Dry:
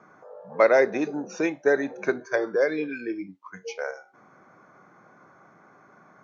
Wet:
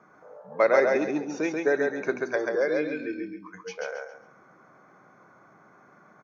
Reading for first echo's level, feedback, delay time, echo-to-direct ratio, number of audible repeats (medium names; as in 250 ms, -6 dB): -3.0 dB, 28%, 136 ms, -2.5 dB, 3